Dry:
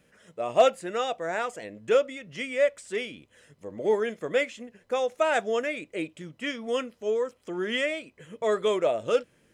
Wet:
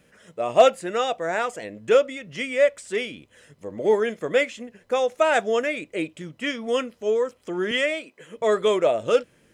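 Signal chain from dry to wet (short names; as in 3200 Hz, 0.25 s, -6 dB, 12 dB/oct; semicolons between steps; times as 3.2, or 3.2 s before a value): 7.71–8.37 HPF 260 Hz 12 dB/oct; gain +4.5 dB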